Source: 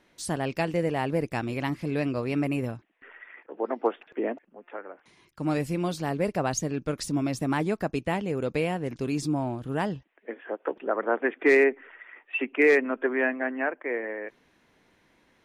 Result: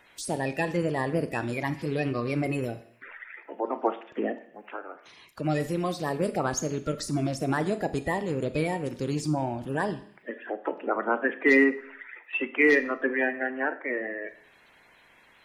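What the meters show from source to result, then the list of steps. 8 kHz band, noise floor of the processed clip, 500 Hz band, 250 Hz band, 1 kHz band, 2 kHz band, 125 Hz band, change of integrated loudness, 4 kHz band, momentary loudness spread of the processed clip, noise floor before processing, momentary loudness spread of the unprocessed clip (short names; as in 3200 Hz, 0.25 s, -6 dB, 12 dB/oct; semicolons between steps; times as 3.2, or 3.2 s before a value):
0.0 dB, -58 dBFS, -1.5 dB, 0.0 dB, +1.0 dB, +1.5 dB, 0.0 dB, 0.0 dB, -0.5 dB, 18 LU, -66 dBFS, 19 LU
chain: bin magnitudes rounded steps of 30 dB; Schroeder reverb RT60 0.54 s, combs from 26 ms, DRR 11.5 dB; mismatched tape noise reduction encoder only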